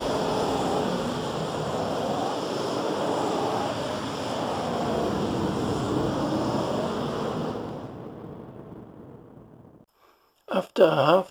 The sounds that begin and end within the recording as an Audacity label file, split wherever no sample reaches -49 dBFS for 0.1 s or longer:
10.030000	10.140000	sound